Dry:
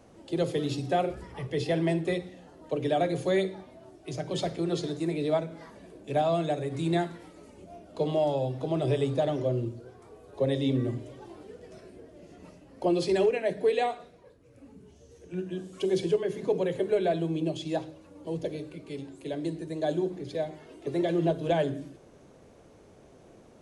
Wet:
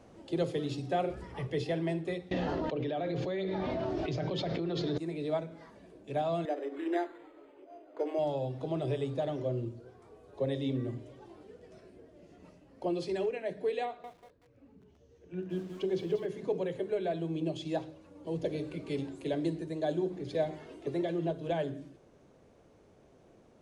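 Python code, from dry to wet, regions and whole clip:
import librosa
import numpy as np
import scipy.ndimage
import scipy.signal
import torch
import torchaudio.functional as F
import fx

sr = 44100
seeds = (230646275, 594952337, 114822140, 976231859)

y = fx.chain(x, sr, fx.lowpass(hz=5100.0, slope=24),
    fx.env_flatten(amount_pct=100), at=(2.31, 4.98))
y = fx.chain(y, sr, fx.brickwall_highpass(low_hz=260.0),
    fx.resample_linear(factor=8), at=(6.45, 8.19))
y = fx.chain(y, sr, fx.air_absorb(metres=94.0),
    fx.echo_crushed(ms=188, feedback_pct=35, bits=8, wet_db=-8), at=(13.85, 16.26))
y = fx.high_shelf(y, sr, hz=9300.0, db=-10.5)
y = fx.rider(y, sr, range_db=10, speed_s=0.5)
y = y * librosa.db_to_amplitude(-6.5)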